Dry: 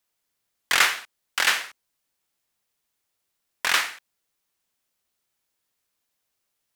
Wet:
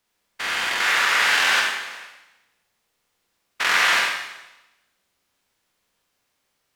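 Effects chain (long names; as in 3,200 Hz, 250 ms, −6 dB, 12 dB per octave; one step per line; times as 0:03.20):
spectrum averaged block by block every 400 ms
low-pass filter 4,000 Hz 6 dB per octave
four-comb reverb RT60 0.98 s, combs from 32 ms, DRR −1.5 dB
level +8.5 dB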